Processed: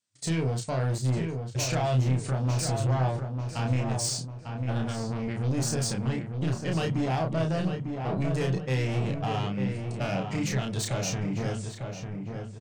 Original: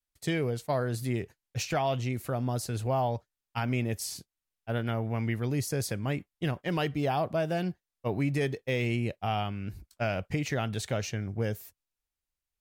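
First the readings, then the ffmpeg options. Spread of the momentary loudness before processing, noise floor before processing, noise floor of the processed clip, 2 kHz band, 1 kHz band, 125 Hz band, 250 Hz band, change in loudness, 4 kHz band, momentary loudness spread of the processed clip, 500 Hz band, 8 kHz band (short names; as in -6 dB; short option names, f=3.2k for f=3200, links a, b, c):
7 LU, under -85 dBFS, -40 dBFS, -1.0 dB, 0.0 dB, +5.0 dB, +2.5 dB, +2.5 dB, +3.5 dB, 6 LU, -0.5 dB, +7.0 dB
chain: -filter_complex "[0:a]afftfilt=real='re*between(b*sr/4096,100,9200)':imag='im*between(b*sr/4096,100,9200)':win_size=4096:overlap=0.75,bandreject=f=50:t=h:w=6,bandreject=f=100:t=h:w=6,bandreject=f=150:t=h:w=6,acontrast=88,alimiter=limit=-16dB:level=0:latency=1:release=270,bass=f=250:g=8,treble=f=4k:g=7,asoftclip=type=tanh:threshold=-21.5dB,asplit=2[a][b];[b]adelay=31,volume=-3.5dB[c];[a][c]amix=inputs=2:normalize=0,asplit=2[d][e];[e]adelay=899,lowpass=f=2.1k:p=1,volume=-5.5dB,asplit=2[f][g];[g]adelay=899,lowpass=f=2.1k:p=1,volume=0.43,asplit=2[h][i];[i]adelay=899,lowpass=f=2.1k:p=1,volume=0.43,asplit=2[j][k];[k]adelay=899,lowpass=f=2.1k:p=1,volume=0.43,asplit=2[l][m];[m]adelay=899,lowpass=f=2.1k:p=1,volume=0.43[n];[d][f][h][j][l][n]amix=inputs=6:normalize=0,volume=-4dB"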